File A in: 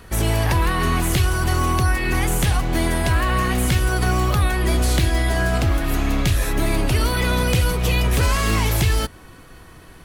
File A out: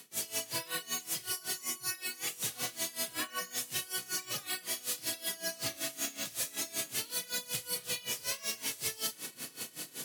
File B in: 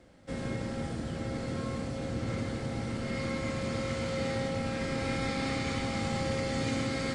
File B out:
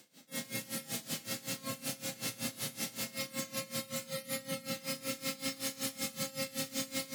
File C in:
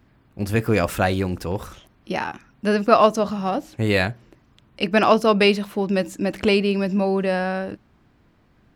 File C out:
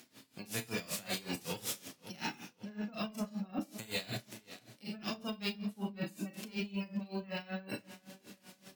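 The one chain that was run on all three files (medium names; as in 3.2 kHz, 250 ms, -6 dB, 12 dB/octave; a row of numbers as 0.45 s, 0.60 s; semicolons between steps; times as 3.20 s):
formants flattened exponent 0.3; high-pass 140 Hz 24 dB/octave; spectral gate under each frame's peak -15 dB strong; peaking EQ 1.1 kHz -12 dB 2.4 oct; careless resampling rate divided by 2×, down none, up hold; reverse; compression 6:1, threshold -37 dBFS; reverse; dynamic bell 310 Hz, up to -4 dB, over -54 dBFS, Q 0.93; on a send: filtered feedback delay 529 ms, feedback 52%, low-pass 4.8 kHz, level -16 dB; on the sum: Schroeder reverb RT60 0.38 s, combs from 26 ms, DRR 0 dB; Chebyshev shaper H 5 -15 dB, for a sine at -22 dBFS; logarithmic tremolo 5.3 Hz, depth 20 dB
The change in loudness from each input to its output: -15.0 LU, -4.0 LU, -19.0 LU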